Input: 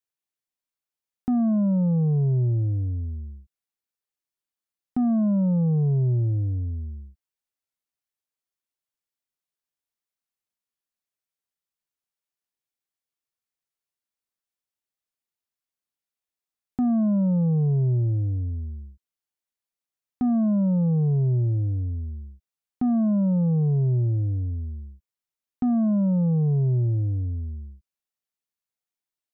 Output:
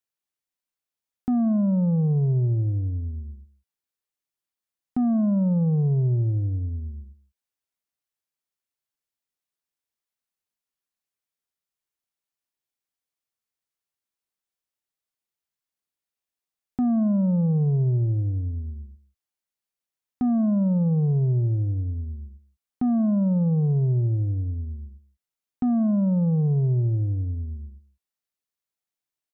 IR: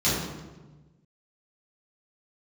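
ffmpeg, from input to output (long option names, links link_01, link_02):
-af "aecho=1:1:171:0.119"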